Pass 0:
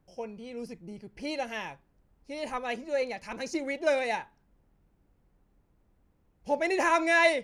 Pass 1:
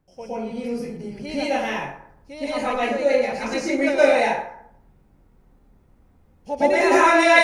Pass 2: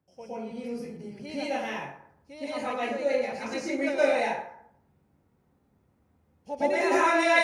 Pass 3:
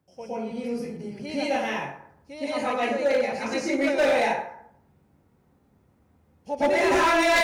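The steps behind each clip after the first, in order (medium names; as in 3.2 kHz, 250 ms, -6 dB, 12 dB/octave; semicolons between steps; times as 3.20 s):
plate-style reverb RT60 0.69 s, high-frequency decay 0.55×, pre-delay 105 ms, DRR -10 dB
high-pass 70 Hz 24 dB/octave; trim -7.5 dB
hard clipper -22 dBFS, distortion -11 dB; trim +5 dB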